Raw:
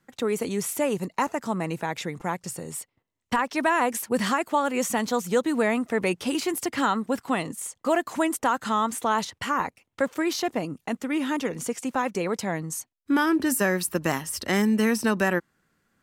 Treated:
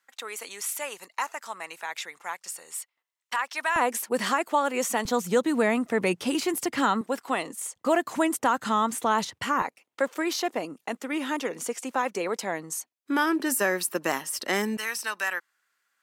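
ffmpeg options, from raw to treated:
ffmpeg -i in.wav -af "asetnsamples=nb_out_samples=441:pad=0,asendcmd='3.76 highpass f 310;5.05 highpass f 110;7.01 highpass f 350;7.76 highpass f 93;9.62 highpass f 340;14.77 highpass f 1200',highpass=1100" out.wav

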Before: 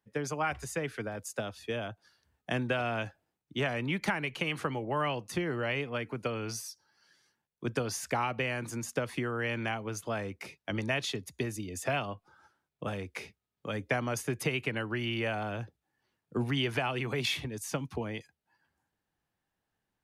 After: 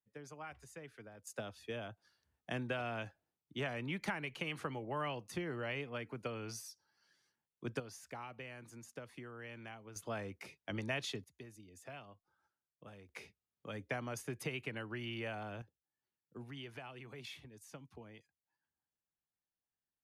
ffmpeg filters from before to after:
ffmpeg -i in.wav -af "asetnsamples=nb_out_samples=441:pad=0,asendcmd='1.27 volume volume -8dB;7.8 volume volume -16.5dB;9.96 volume volume -7dB;11.24 volume volume -19dB;13.09 volume volume -9.5dB;15.62 volume volume -18dB',volume=-17dB" out.wav

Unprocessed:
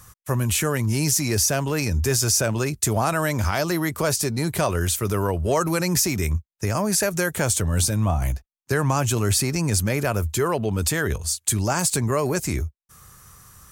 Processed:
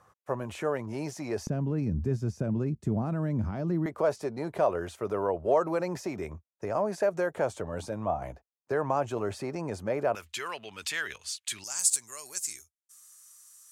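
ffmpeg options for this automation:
ffmpeg -i in.wav -af "asetnsamples=nb_out_samples=441:pad=0,asendcmd='1.47 bandpass f 200;3.86 bandpass f 620;10.15 bandpass f 2700;11.64 bandpass f 7900',bandpass=frequency=640:width_type=q:width=1.5:csg=0" out.wav

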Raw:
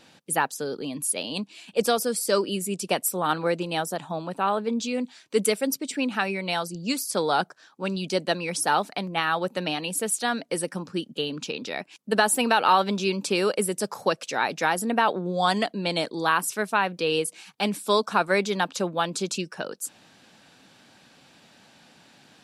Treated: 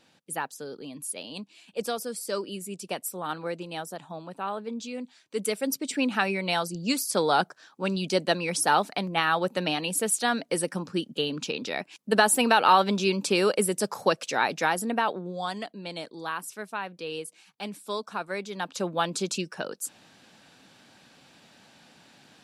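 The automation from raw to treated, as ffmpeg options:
ffmpeg -i in.wav -af "volume=10dB,afade=type=in:start_time=5.37:duration=0.57:silence=0.375837,afade=type=out:start_time=14.37:duration=1.14:silence=0.281838,afade=type=in:start_time=18.52:duration=0.43:silence=0.334965" out.wav

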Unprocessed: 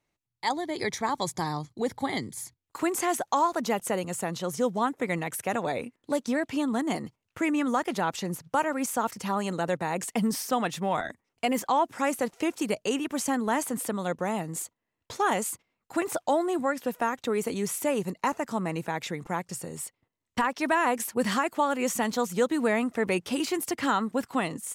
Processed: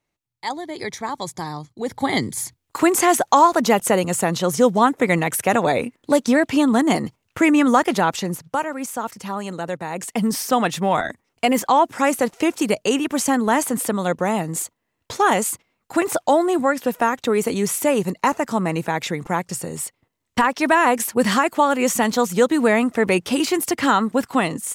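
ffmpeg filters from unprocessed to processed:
ffmpeg -i in.wav -af "volume=18.5dB,afade=type=in:start_time=1.81:duration=0.4:silence=0.316228,afade=type=out:start_time=7.79:duration=0.9:silence=0.316228,afade=type=in:start_time=9.9:duration=0.67:silence=0.421697" out.wav

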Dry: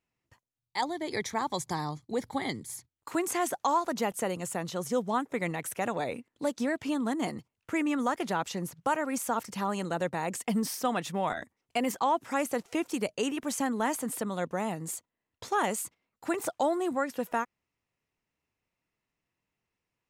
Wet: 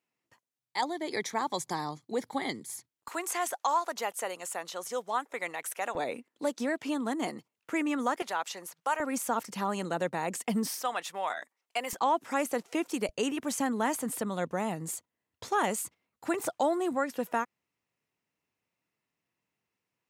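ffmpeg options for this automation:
ffmpeg -i in.wav -af "asetnsamples=nb_out_samples=441:pad=0,asendcmd='3.08 highpass f 600;5.95 highpass f 240;8.22 highpass f 650;9 highpass f 160;10.81 highpass f 660;11.93 highpass f 190;13.09 highpass f 50;16.55 highpass f 120',highpass=210" out.wav

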